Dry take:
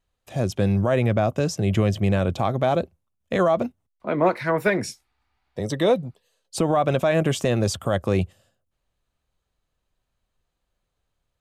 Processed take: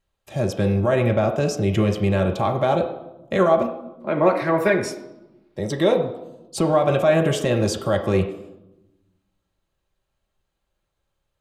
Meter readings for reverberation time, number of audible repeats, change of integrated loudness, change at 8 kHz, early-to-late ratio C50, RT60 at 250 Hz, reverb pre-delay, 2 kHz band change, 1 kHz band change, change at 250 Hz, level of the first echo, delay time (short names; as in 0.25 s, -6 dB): 0.95 s, none, +2.0 dB, 0.0 dB, 9.0 dB, 1.4 s, 4 ms, +1.5 dB, +2.0 dB, +1.5 dB, none, none